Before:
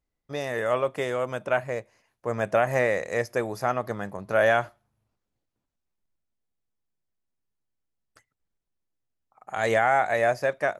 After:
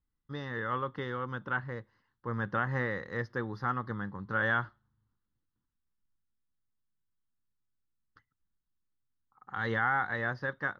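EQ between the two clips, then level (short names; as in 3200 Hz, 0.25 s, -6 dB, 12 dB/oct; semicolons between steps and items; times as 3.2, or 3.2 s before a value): air absorption 260 m; bell 400 Hz -4.5 dB 0.41 oct; fixed phaser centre 2400 Hz, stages 6; 0.0 dB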